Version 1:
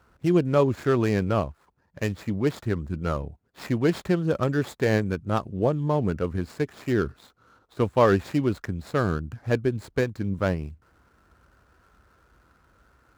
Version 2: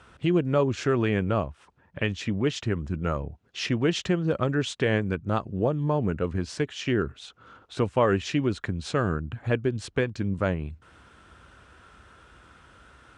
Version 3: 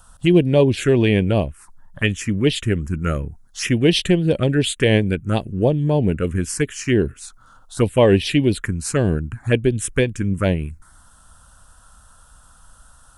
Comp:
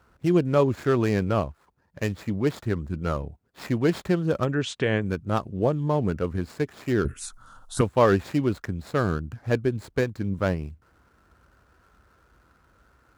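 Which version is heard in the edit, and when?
1
4.45–5.04 s: from 2
7.05–7.81 s: from 3

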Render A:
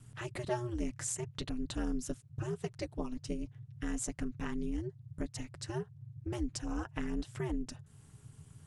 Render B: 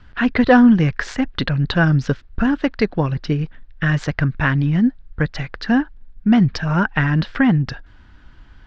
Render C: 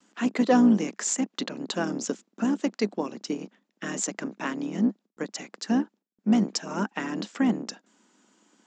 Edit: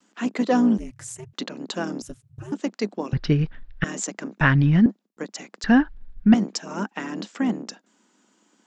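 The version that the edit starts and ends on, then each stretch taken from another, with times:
C
0.78–1.33 s: from A
2.02–2.52 s: from A
3.13–3.84 s: from B
4.41–4.86 s: from B
5.64–6.34 s: from B

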